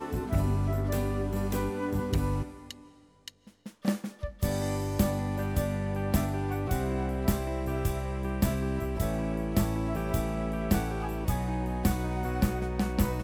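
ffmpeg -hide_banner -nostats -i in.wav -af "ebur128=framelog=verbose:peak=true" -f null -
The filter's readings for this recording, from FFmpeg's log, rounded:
Integrated loudness:
  I:         -30.6 LUFS
  Threshold: -40.9 LUFS
Loudness range:
  LRA:         3.2 LU
  Threshold: -51.2 LUFS
  LRA low:   -33.5 LUFS
  LRA high:  -30.3 LUFS
True peak:
  Peak:      -11.3 dBFS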